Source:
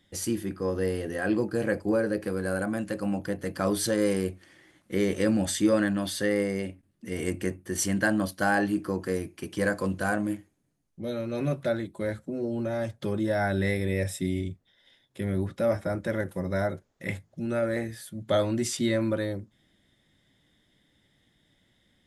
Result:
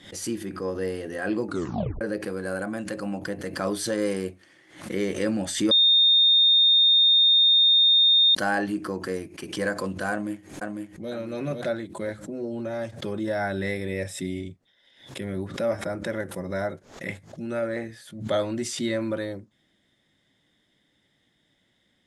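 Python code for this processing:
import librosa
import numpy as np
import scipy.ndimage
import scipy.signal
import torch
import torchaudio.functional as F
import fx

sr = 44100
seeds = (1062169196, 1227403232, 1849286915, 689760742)

y = fx.echo_throw(x, sr, start_s=10.11, length_s=1.0, ms=500, feedback_pct=30, wet_db=-3.5)
y = fx.high_shelf(y, sr, hz=7300.0, db=-8.0, at=(17.67, 18.21))
y = fx.edit(y, sr, fx.tape_stop(start_s=1.47, length_s=0.54),
    fx.bleep(start_s=5.71, length_s=2.64, hz=3660.0, db=-14.5), tone=tone)
y = scipy.signal.sosfilt(scipy.signal.butter(2, 9600.0, 'lowpass', fs=sr, output='sos'), y)
y = fx.low_shelf(y, sr, hz=110.0, db=-11.0)
y = fx.pre_swell(y, sr, db_per_s=110.0)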